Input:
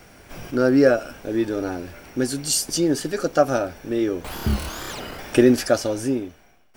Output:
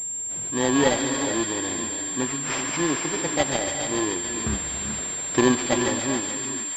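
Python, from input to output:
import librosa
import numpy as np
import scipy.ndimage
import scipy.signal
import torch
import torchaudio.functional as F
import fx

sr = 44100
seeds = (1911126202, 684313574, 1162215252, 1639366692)

p1 = fx.bit_reversed(x, sr, seeds[0], block=32)
p2 = scipy.signal.sosfilt(scipy.signal.butter(2, 82.0, 'highpass', fs=sr, output='sos'), p1)
p3 = p2 + fx.echo_wet_highpass(p2, sr, ms=143, feedback_pct=82, hz=2400.0, wet_db=-5.5, dry=0)
p4 = fx.rev_gated(p3, sr, seeds[1], gate_ms=470, shape='rising', drr_db=6.5)
p5 = fx.pwm(p4, sr, carrier_hz=7400.0)
y = p5 * librosa.db_to_amplitude(-4.0)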